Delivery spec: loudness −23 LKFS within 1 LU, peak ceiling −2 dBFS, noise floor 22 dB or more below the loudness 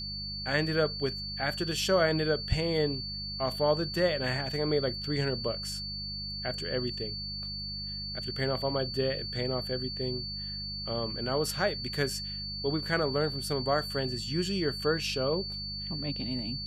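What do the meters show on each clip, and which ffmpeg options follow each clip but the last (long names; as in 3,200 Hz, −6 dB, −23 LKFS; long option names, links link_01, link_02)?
mains hum 50 Hz; hum harmonics up to 200 Hz; level of the hum −40 dBFS; interfering tone 4,500 Hz; level of the tone −36 dBFS; integrated loudness −31.0 LKFS; sample peak −13.0 dBFS; target loudness −23.0 LKFS
→ -af "bandreject=frequency=50:width_type=h:width=4,bandreject=frequency=100:width_type=h:width=4,bandreject=frequency=150:width_type=h:width=4,bandreject=frequency=200:width_type=h:width=4"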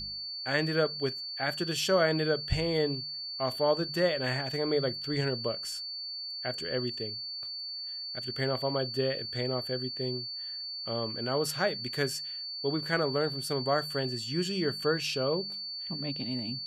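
mains hum none found; interfering tone 4,500 Hz; level of the tone −36 dBFS
→ -af "bandreject=frequency=4500:width=30"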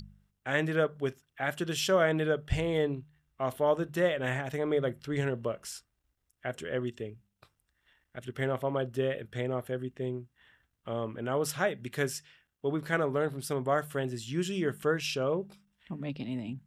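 interfering tone none found; integrated loudness −32.0 LKFS; sample peak −13.0 dBFS; target loudness −23.0 LKFS
→ -af "volume=9dB"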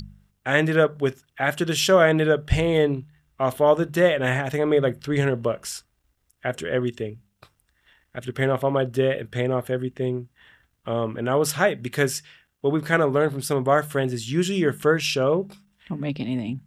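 integrated loudness −23.0 LKFS; sample peak −4.0 dBFS; background noise floor −71 dBFS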